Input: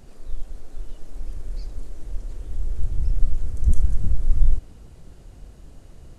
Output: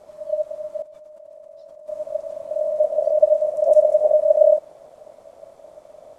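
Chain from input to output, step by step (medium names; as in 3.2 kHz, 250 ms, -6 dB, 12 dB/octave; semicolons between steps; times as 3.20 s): 0.82–1.88 s: level held to a coarse grid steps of 20 dB; ring modulator 610 Hz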